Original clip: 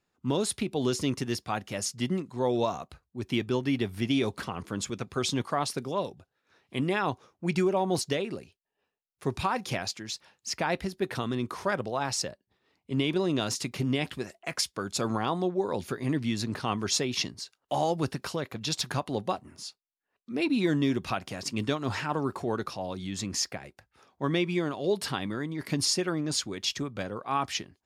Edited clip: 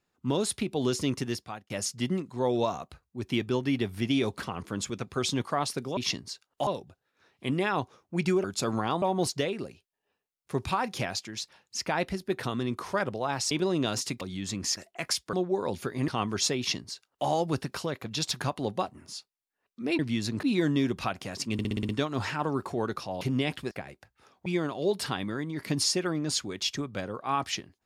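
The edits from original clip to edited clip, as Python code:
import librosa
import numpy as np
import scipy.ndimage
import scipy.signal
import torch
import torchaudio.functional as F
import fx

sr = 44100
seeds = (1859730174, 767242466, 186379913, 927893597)

y = fx.edit(x, sr, fx.fade_out_span(start_s=1.26, length_s=0.44),
    fx.cut(start_s=12.23, length_s=0.82),
    fx.swap(start_s=13.75, length_s=0.5, other_s=22.91, other_length_s=0.56),
    fx.move(start_s=14.81, length_s=0.58, to_s=7.74),
    fx.move(start_s=16.14, length_s=0.44, to_s=20.49),
    fx.duplicate(start_s=17.08, length_s=0.7, to_s=5.97),
    fx.stutter(start_s=21.59, slice_s=0.06, count=7),
    fx.cut(start_s=24.22, length_s=0.26), tone=tone)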